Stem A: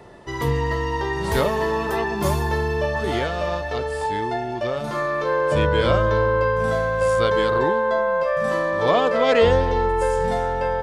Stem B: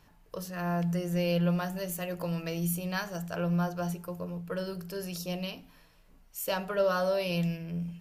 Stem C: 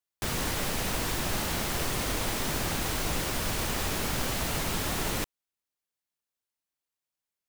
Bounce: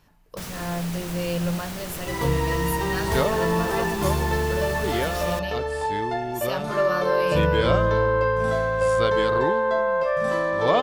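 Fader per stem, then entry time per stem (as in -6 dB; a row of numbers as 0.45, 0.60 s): -1.5, +1.0, -5.5 dB; 1.80, 0.00, 0.15 s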